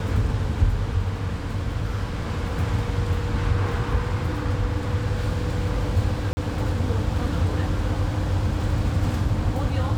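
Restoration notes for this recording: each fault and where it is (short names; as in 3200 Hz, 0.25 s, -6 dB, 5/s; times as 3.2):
6.33–6.37 gap 40 ms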